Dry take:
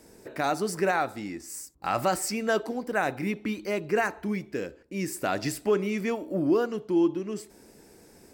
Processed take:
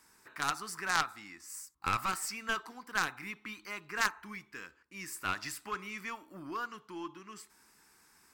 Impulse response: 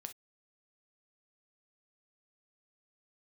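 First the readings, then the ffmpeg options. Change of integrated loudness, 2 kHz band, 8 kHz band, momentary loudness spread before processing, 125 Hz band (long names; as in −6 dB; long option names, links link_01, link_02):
−8.0 dB, −2.5 dB, −4.0 dB, 11 LU, −13.5 dB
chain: -af "lowshelf=frequency=790:width_type=q:width=3:gain=-12,aeval=exprs='0.251*(cos(1*acos(clip(val(0)/0.251,-1,1)))-cos(1*PI/2))+0.1*(cos(3*acos(clip(val(0)/0.251,-1,1)))-cos(3*PI/2))+0.0355*(cos(5*acos(clip(val(0)/0.251,-1,1)))-cos(5*PI/2))+0.0316*(cos(6*acos(clip(val(0)/0.251,-1,1)))-cos(6*PI/2))+0.02*(cos(8*acos(clip(val(0)/0.251,-1,1)))-cos(8*PI/2))':channel_layout=same"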